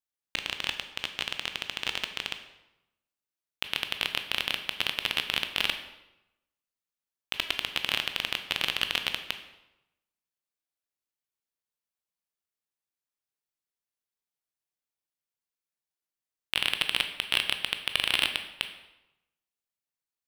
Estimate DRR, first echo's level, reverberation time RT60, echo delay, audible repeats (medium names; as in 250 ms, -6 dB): 7.0 dB, no echo, 0.90 s, no echo, no echo